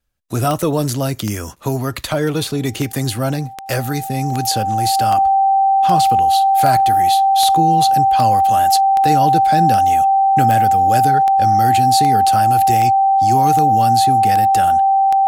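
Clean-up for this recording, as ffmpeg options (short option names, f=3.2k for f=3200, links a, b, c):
-af "adeclick=t=4,bandreject=f=780:w=30"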